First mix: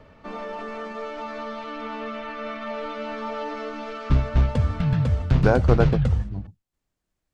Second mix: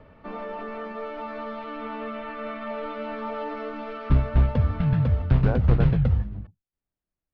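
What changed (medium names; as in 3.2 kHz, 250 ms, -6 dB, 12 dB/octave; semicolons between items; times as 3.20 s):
speech -9.0 dB; master: add distance through air 260 m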